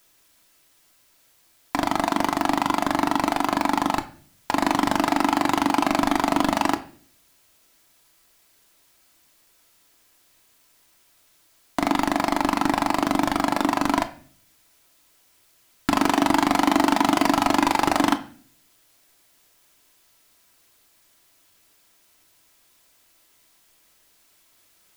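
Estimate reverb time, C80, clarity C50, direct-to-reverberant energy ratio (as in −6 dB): 0.50 s, 19.0 dB, 15.0 dB, 6.5 dB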